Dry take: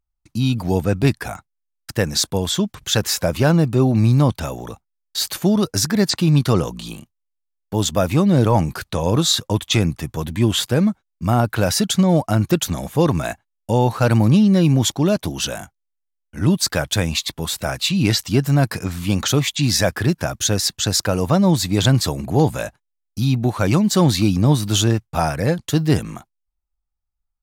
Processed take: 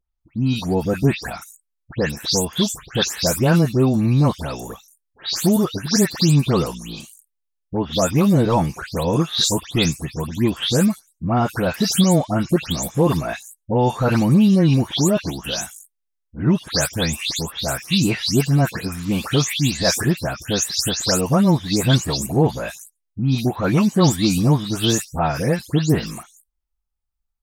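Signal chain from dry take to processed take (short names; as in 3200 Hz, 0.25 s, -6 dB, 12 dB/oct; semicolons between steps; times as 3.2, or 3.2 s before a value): spectral delay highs late, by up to 0.207 s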